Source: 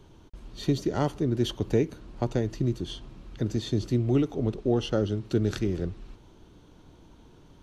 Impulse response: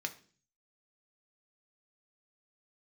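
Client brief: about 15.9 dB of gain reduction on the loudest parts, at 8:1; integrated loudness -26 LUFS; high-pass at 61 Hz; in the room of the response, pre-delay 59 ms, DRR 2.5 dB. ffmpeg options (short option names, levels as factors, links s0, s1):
-filter_complex "[0:a]highpass=61,acompressor=threshold=0.0158:ratio=8,asplit=2[s0][s1];[1:a]atrim=start_sample=2205,adelay=59[s2];[s1][s2]afir=irnorm=-1:irlink=0,volume=0.631[s3];[s0][s3]amix=inputs=2:normalize=0,volume=5.31"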